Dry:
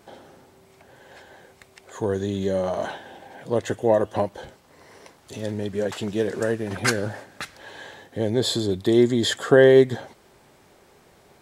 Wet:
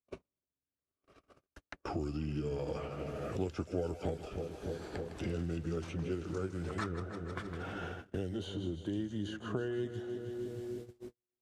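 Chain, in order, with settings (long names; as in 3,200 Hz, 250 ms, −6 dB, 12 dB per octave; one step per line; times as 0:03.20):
pitch glide at a constant tempo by −6.5 semitones ending unshifted
source passing by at 0:04.20, 11 m/s, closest 9.2 metres
low-shelf EQ 120 Hz +8.5 dB
on a send: echo with a time of its own for lows and highs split 590 Hz, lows 303 ms, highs 157 ms, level −11.5 dB
on the sum: noise gate −54 dBFS, range −59 dB
multiband upward and downward compressor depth 100%
level −6 dB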